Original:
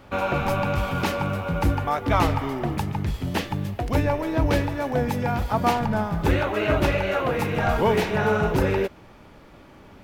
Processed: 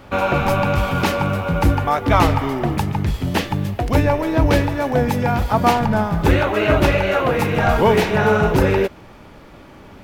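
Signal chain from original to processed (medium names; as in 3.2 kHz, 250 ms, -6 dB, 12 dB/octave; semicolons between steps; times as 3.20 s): crackle 12 per s -51 dBFS; trim +6 dB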